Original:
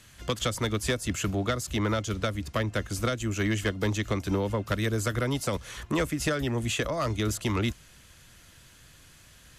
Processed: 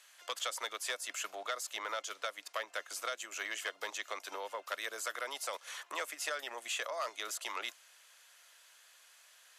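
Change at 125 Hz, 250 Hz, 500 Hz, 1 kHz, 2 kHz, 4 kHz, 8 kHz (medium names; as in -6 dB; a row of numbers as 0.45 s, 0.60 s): under -40 dB, -31.0 dB, -13.0 dB, -5.5 dB, -5.5 dB, -5.5 dB, -5.0 dB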